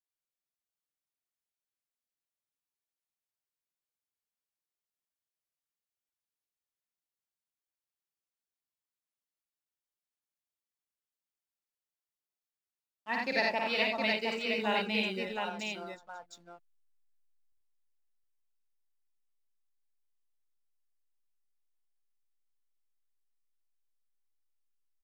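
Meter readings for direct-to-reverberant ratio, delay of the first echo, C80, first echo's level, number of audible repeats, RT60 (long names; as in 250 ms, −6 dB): no reverb audible, 52 ms, no reverb audible, −3.0 dB, 5, no reverb audible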